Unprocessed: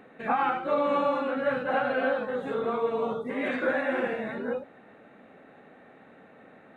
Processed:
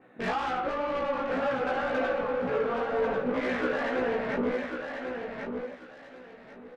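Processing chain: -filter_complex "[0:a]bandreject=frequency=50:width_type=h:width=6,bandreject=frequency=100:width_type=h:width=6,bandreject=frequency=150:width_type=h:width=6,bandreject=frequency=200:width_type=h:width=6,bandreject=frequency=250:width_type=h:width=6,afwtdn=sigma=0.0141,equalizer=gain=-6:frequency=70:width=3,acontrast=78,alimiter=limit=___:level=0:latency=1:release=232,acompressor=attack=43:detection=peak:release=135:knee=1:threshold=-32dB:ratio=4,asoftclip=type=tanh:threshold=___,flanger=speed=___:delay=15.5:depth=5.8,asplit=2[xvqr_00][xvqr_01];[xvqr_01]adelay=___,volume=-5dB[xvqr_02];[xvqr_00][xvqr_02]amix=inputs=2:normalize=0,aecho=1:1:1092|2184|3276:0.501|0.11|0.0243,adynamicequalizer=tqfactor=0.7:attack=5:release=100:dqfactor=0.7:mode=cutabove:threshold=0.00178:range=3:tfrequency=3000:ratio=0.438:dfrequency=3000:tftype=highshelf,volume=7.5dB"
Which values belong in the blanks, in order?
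-13dB, -32dB, 2, 16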